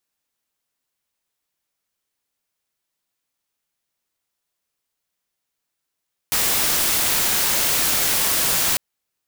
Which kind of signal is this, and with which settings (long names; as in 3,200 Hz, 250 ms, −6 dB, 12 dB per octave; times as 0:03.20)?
noise white, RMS −19.5 dBFS 2.45 s